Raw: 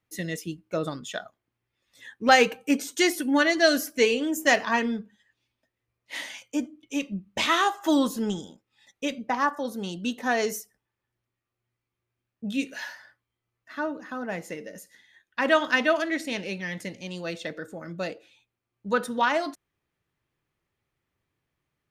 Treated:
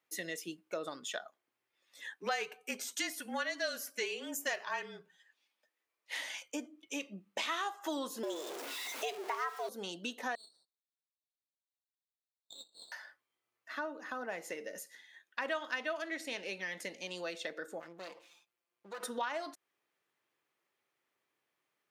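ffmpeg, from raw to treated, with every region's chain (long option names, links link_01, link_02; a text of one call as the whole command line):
ffmpeg -i in.wav -filter_complex "[0:a]asettb=1/sr,asplit=3[link_01][link_02][link_03];[link_01]atrim=end=2.154[link_04];[link_02]atrim=start=2.15:end=6.17,asetpts=PTS-STARTPTS,afade=type=in:duration=0.004:curve=qsin,afade=type=out:start_time=4.016:duration=0.004:curve=qsin,highpass=frequency=480:poles=1,afreqshift=-33[link_05];[link_03]atrim=start=6.166[link_06];[link_04][link_05]acrossfade=duration=0.004:curve1=hsin:curve2=qsin[link_07];[link_07][link_06]acrossfade=duration=0.004:curve1=qsin:curve2=hsin,asettb=1/sr,asplit=3[link_08][link_09][link_10];[link_08]atrim=end=8.234[link_11];[link_09]atrim=start=8.23:end=9.69,asetpts=PTS-STARTPTS,afade=type=in:duration=0.004:curve=qsin,afade=type=out:start_time=1.456:duration=0.004:curve=qsin,aeval=exprs='val(0)+0.5*0.0188*sgn(val(0))':channel_layout=same,afreqshift=160[link_12];[link_10]atrim=start=9.686[link_13];[link_11][link_12]acrossfade=duration=0.004:curve1=hsin:curve2=qsin[link_14];[link_14][link_13]acrossfade=duration=0.004:curve1=qsin:curve2=hsin,asettb=1/sr,asplit=3[link_15][link_16][link_17];[link_15]atrim=end=10.354[link_18];[link_16]atrim=start=10.35:end=12.92,asetpts=PTS-STARTPTS,afade=type=in:duration=0.004:curve=qsin,afade=type=out:start_time=2.566:duration=0.004:curve=qsin,asuperpass=centerf=4000:order=8:qfactor=4.1,aeval=exprs='max(val(0),0)':channel_layout=same[link_19];[link_17]atrim=start=12.916[link_20];[link_18][link_19]acrossfade=duration=0.004:curve1=hsin:curve2=qsin[link_21];[link_21][link_20]acrossfade=duration=0.004:curve1=qsin:curve2=hsin,asettb=1/sr,asplit=3[link_22][link_23][link_24];[link_22]atrim=end=17.804[link_25];[link_23]atrim=start=17.8:end=19.03,asetpts=PTS-STARTPTS,afade=type=in:duration=0.004:curve=qsin,afade=type=out:start_time=1.226:duration=0.004:curve=qsin,aeval=exprs='max(val(0),0)':channel_layout=same,aecho=1:1:5.8:0.63,atrim=end_sample=54243,acompressor=threshold=-43dB:ratio=2.5:attack=3.2:release=140:knee=1:detection=peak[link_26];[link_24]atrim=start=19.026[link_27];[link_25][link_26]acrossfade=duration=0.004:curve1=hsin:curve2=qsin[link_28];[link_28][link_27]acrossfade=duration=0.004:curve1=qsin:curve2=hsin,highpass=410,acompressor=threshold=-38dB:ratio=3" out.wav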